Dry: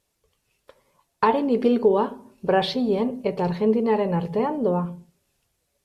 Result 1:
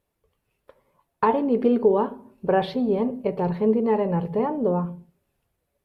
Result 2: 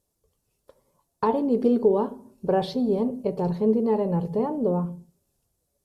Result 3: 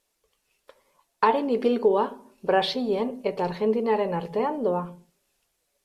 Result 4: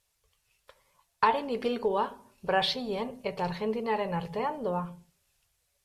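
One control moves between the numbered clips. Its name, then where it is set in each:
peaking EQ, frequency: 6.2 kHz, 2.3 kHz, 95 Hz, 280 Hz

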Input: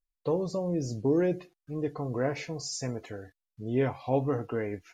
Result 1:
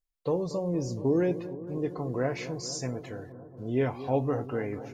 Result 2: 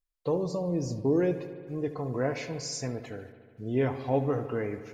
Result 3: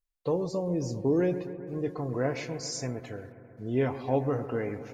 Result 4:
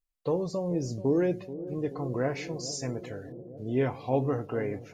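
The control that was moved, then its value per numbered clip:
bucket-brigade echo, time: 232 ms, 74 ms, 133 ms, 432 ms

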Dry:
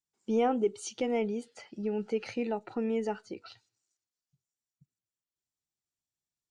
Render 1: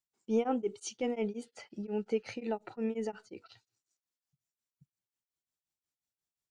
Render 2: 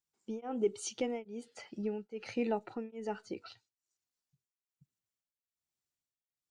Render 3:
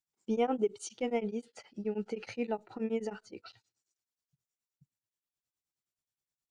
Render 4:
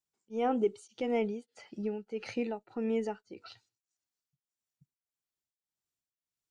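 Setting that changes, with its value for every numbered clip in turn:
tremolo of two beating tones, nulls at: 5.6 Hz, 1.2 Hz, 9.5 Hz, 1.7 Hz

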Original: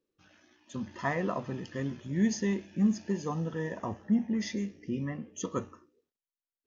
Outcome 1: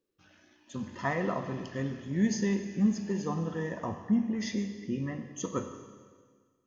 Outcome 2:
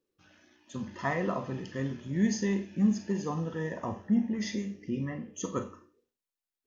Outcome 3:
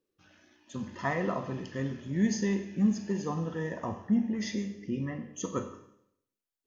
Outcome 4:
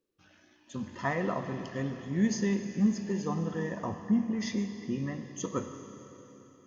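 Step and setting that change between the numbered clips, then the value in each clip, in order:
Schroeder reverb, RT60: 1.7 s, 0.32 s, 0.73 s, 3.8 s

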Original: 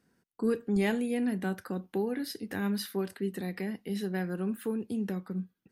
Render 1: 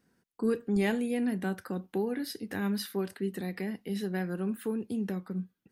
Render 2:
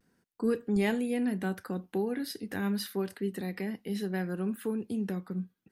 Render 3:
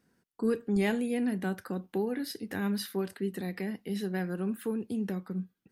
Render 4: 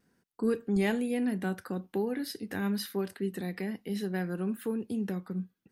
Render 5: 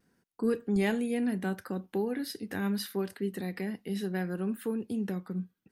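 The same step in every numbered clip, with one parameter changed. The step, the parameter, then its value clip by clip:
vibrato, rate: 5.5 Hz, 0.35 Hz, 12 Hz, 1.1 Hz, 0.7 Hz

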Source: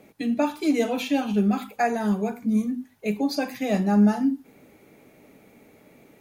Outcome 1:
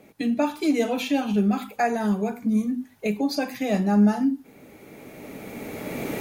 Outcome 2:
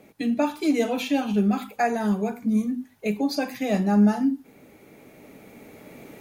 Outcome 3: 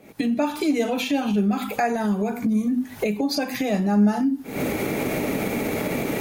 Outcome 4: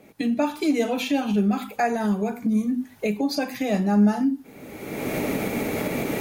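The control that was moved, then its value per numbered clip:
recorder AGC, rising by: 13 dB/s, 5.1 dB/s, 90 dB/s, 33 dB/s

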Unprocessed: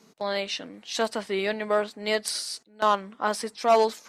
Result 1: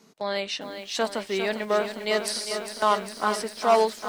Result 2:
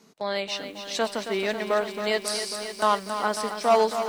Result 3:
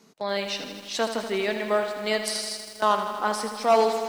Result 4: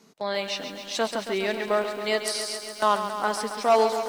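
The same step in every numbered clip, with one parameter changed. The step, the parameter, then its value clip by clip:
bit-crushed delay, time: 403 ms, 272 ms, 80 ms, 137 ms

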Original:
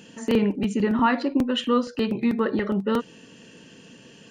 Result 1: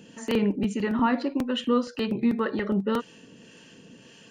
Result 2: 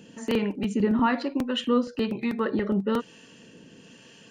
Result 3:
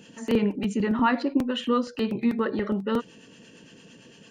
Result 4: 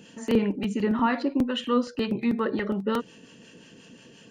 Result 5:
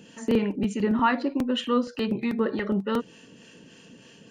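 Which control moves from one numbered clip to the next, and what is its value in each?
harmonic tremolo, rate: 1.8 Hz, 1.1 Hz, 8.8 Hz, 5.6 Hz, 3.3 Hz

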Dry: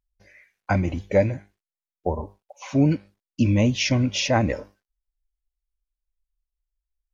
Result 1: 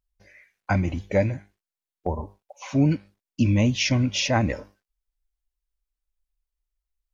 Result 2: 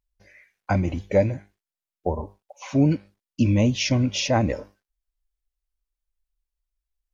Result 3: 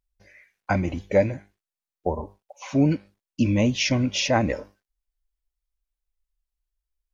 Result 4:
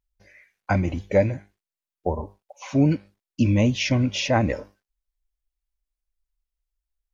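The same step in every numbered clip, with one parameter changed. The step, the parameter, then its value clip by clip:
dynamic bell, frequency: 480 Hz, 1.8 kHz, 100 Hz, 5.7 kHz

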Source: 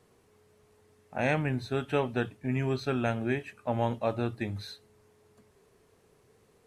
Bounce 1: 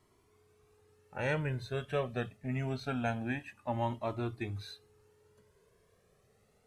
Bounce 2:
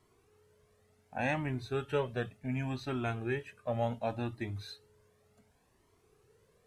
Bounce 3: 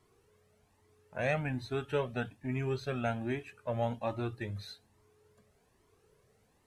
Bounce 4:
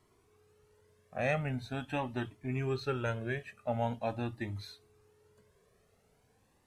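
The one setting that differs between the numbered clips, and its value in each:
Shepard-style flanger, rate: 0.25 Hz, 0.68 Hz, 1.2 Hz, 0.44 Hz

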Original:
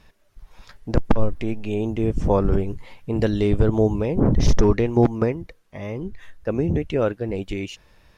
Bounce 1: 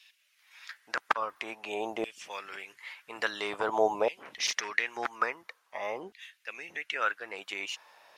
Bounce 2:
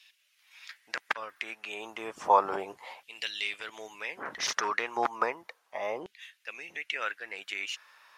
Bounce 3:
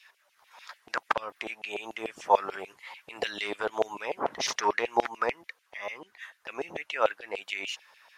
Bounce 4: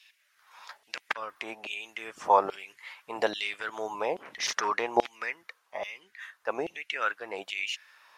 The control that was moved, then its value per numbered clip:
LFO high-pass, rate: 0.49 Hz, 0.33 Hz, 6.8 Hz, 1.2 Hz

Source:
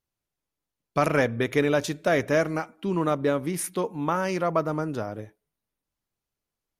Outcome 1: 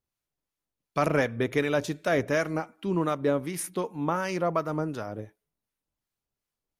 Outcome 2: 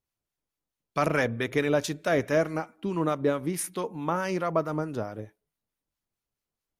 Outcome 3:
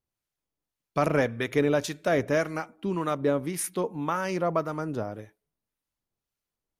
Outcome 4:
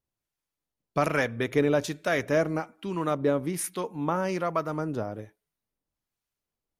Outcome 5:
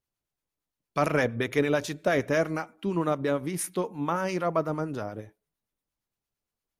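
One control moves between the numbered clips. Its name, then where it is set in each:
harmonic tremolo, rate: 2.7 Hz, 4.6 Hz, 1.8 Hz, 1.2 Hz, 8.7 Hz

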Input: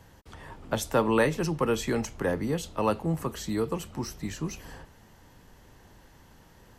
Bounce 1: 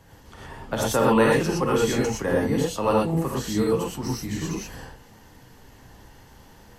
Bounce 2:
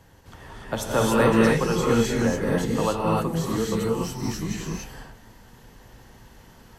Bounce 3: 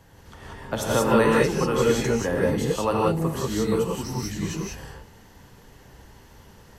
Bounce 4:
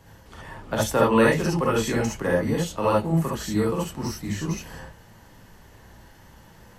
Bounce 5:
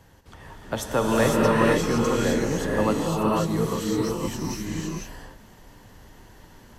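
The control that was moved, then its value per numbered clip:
gated-style reverb, gate: 140 ms, 320 ms, 210 ms, 90 ms, 540 ms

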